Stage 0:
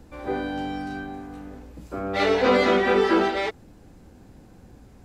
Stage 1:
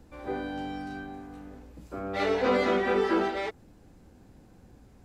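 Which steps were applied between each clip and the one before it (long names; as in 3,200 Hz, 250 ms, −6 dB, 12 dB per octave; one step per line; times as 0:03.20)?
dynamic equaliser 3,800 Hz, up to −3 dB, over −38 dBFS, Q 0.83
level −5.5 dB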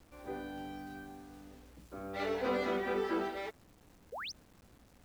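sound drawn into the spectrogram rise, 0:04.12–0:04.32, 410–6,500 Hz −33 dBFS
bit reduction 9 bits
level −8.5 dB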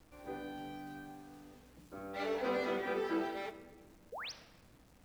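rectangular room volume 1,200 cubic metres, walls mixed, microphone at 0.55 metres
level −2 dB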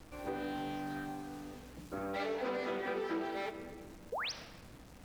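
downward compressor 4 to 1, threshold −44 dBFS, peak gain reduction 11.5 dB
highs frequency-modulated by the lows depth 0.14 ms
level +8.5 dB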